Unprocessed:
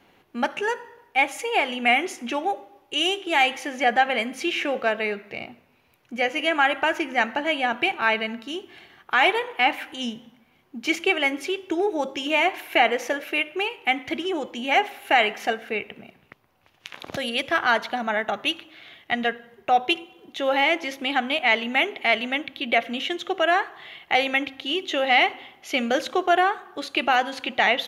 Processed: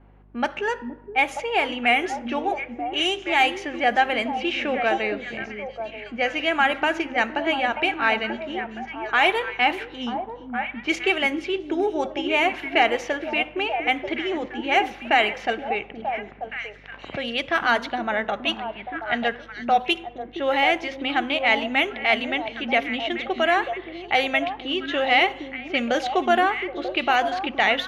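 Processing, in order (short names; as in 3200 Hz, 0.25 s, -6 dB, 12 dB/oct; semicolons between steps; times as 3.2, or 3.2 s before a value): hum 50 Hz, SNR 28 dB; low-pass opened by the level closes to 1300 Hz, open at -16.5 dBFS; delay with a stepping band-pass 0.469 s, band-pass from 260 Hz, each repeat 1.4 oct, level -3.5 dB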